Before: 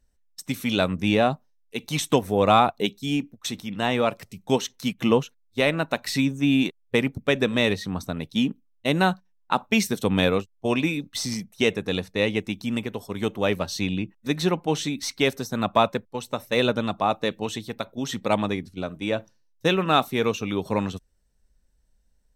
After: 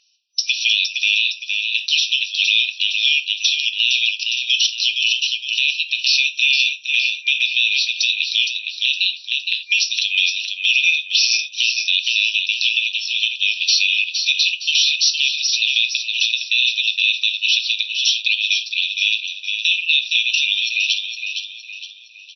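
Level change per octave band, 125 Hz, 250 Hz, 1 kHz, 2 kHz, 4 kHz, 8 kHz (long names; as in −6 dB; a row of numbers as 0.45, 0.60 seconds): below −40 dB, below −40 dB, below −40 dB, +12.5 dB, +17.0 dB, +11.5 dB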